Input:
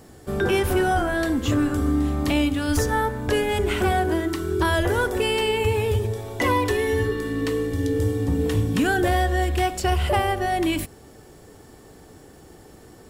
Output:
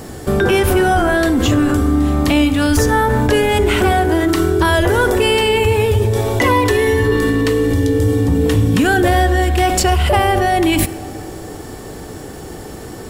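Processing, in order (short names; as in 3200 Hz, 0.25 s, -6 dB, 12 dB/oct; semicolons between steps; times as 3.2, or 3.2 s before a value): in parallel at 0 dB: negative-ratio compressor -30 dBFS, ratio -1; on the sum: reverb RT60 3.7 s, pre-delay 30 ms, DRR 16 dB; gain +5.5 dB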